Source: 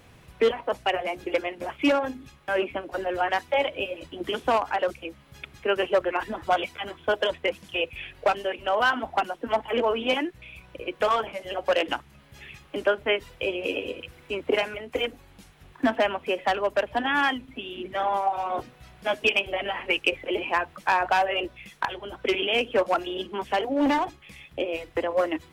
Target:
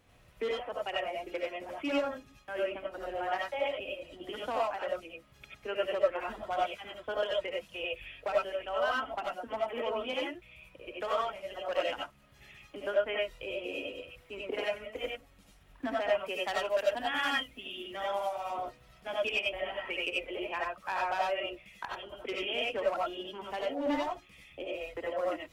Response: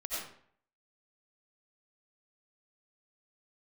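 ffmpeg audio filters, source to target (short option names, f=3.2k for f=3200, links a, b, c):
-filter_complex "[0:a]asettb=1/sr,asplit=3[a][b][c];[a]atrim=end=16.174[d];[b]atrim=start=16.17:end=18.5,asetpts=PTS-STARTPTS,afade=t=in:d=0.004:c=qsin,afade=t=out:st=2.326:d=0.004:c=qsin,highshelf=f=3.2k:g=11[e];[c]atrim=start=18.496[f];[d][e]acrossfade=d=0.004:c1=hsin:c2=qsin[g];[g][f]acrossfade=d=0.004:c1=qsin:c2=hsin[h];[1:a]atrim=start_sample=2205,afade=t=out:st=0.15:d=0.01,atrim=end_sample=7056[i];[h][i]afir=irnorm=-1:irlink=0,volume=-8.5dB"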